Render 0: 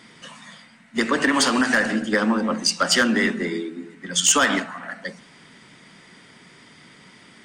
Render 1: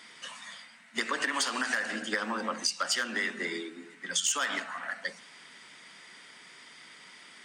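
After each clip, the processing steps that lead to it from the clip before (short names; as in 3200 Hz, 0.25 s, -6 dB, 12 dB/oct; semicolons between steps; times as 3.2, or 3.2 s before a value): HPF 1100 Hz 6 dB/oct; compressor 4:1, threshold -28 dBFS, peak gain reduction 12.5 dB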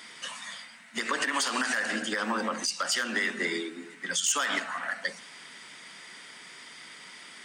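high shelf 9100 Hz +5 dB; limiter -22 dBFS, peak gain reduction 9 dB; gain +4 dB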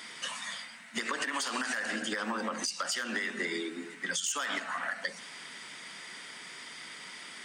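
compressor 5:1, threshold -32 dBFS, peak gain reduction 9 dB; gain +1.5 dB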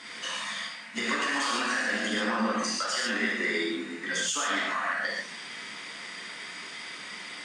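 air absorption 51 m; non-linear reverb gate 0.17 s flat, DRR -5 dB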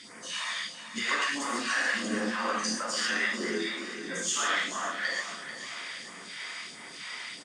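phaser stages 2, 1.5 Hz, lowest notch 150–3600 Hz; feedback echo 0.44 s, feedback 53%, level -11 dB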